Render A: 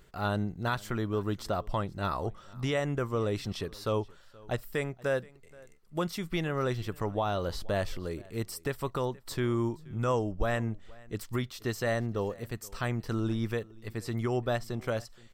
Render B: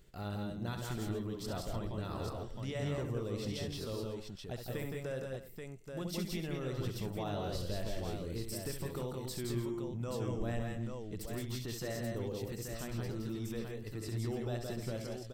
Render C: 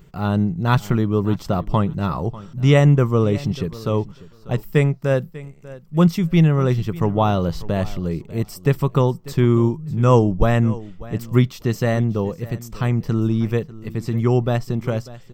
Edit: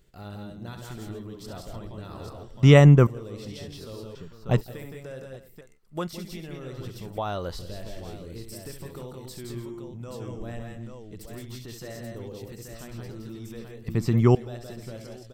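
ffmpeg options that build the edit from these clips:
-filter_complex "[2:a]asplit=3[s0][s1][s2];[0:a]asplit=2[s3][s4];[1:a]asplit=6[s5][s6][s7][s8][s9][s10];[s5]atrim=end=2.632[s11];[s0]atrim=start=2.628:end=3.072[s12];[s6]atrim=start=3.068:end=4.152[s13];[s1]atrim=start=4.148:end=4.612[s14];[s7]atrim=start=4.608:end=5.612[s15];[s3]atrim=start=5.608:end=6.132[s16];[s8]atrim=start=6.128:end=7.182[s17];[s4]atrim=start=7.178:end=7.592[s18];[s9]atrim=start=7.588:end=13.882[s19];[s2]atrim=start=13.878:end=14.352[s20];[s10]atrim=start=14.348[s21];[s11][s12]acrossfade=d=0.004:c1=hsin:c2=hsin[s22];[s22][s13]acrossfade=d=0.004:c1=hsin:c2=hsin[s23];[s23][s14]acrossfade=d=0.004:c1=hsin:c2=hsin[s24];[s24][s15]acrossfade=d=0.004:c1=hsin:c2=hsin[s25];[s25][s16]acrossfade=d=0.004:c1=hsin:c2=hsin[s26];[s26][s17]acrossfade=d=0.004:c1=hsin:c2=hsin[s27];[s27][s18]acrossfade=d=0.004:c1=hsin:c2=hsin[s28];[s28][s19]acrossfade=d=0.004:c1=hsin:c2=hsin[s29];[s29][s20]acrossfade=d=0.004:c1=hsin:c2=hsin[s30];[s30][s21]acrossfade=d=0.004:c1=hsin:c2=hsin"

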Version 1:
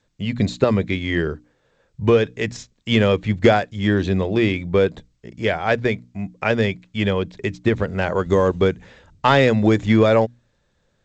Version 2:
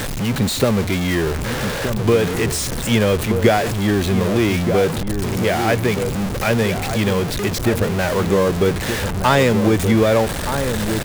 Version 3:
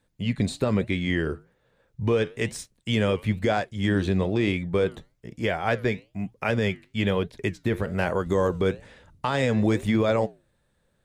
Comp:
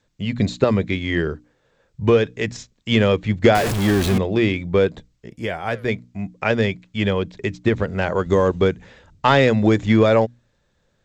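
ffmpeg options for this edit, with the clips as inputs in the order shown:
-filter_complex "[0:a]asplit=3[s0][s1][s2];[s0]atrim=end=3.552[s3];[1:a]atrim=start=3.548:end=4.182[s4];[s1]atrim=start=4.178:end=5.302[s5];[2:a]atrim=start=5.298:end=5.882[s6];[s2]atrim=start=5.878[s7];[s3][s4]acrossfade=d=0.004:c1=hsin:c2=hsin[s8];[s8][s5]acrossfade=d=0.004:c1=hsin:c2=hsin[s9];[s9][s6]acrossfade=d=0.004:c1=hsin:c2=hsin[s10];[s10][s7]acrossfade=d=0.004:c1=hsin:c2=hsin"

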